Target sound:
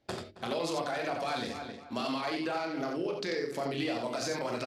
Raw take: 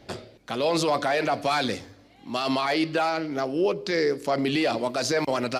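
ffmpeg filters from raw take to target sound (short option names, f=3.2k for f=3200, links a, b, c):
-filter_complex "[0:a]agate=range=-21dB:threshold=-41dB:ratio=16:detection=peak,bandreject=f=50:t=h:w=6,bandreject=f=100:t=h:w=6,bandreject=f=150:t=h:w=6,bandreject=f=200:t=h:w=6,bandreject=f=250:t=h:w=6,bandreject=f=300:t=h:w=6,bandreject=f=350:t=h:w=6,bandreject=f=400:t=h:w=6,asplit=2[a][b];[b]adelay=324,lowpass=f=3.3k:p=1,volume=-17dB,asplit=2[c][d];[d]adelay=324,lowpass=f=3.3k:p=1,volume=0.24[e];[c][e]amix=inputs=2:normalize=0[f];[a][f]amix=inputs=2:normalize=0,acompressor=threshold=-34dB:ratio=4,asplit=2[g][h];[h]aecho=0:1:42|71|102|115:0.562|0.2|0.596|0.168[i];[g][i]amix=inputs=2:normalize=0,atempo=1.2"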